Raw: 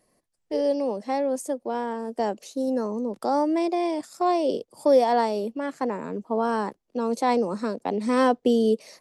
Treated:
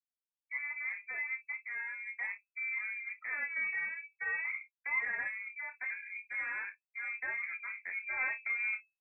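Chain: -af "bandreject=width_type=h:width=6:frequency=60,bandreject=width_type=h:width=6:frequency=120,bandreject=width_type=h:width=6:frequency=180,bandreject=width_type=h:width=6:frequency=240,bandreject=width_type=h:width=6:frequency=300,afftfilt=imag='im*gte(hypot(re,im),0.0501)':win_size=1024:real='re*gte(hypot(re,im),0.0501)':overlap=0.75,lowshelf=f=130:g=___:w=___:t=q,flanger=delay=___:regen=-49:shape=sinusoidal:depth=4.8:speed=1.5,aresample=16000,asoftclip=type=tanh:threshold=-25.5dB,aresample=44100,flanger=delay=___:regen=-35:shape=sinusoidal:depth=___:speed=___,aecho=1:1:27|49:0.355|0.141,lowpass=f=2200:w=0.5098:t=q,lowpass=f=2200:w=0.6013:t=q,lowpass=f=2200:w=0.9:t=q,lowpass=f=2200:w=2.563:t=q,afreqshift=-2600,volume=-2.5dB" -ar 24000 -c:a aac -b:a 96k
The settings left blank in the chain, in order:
9.5, 1.5, 0.7, 9.8, 1.9, 0.68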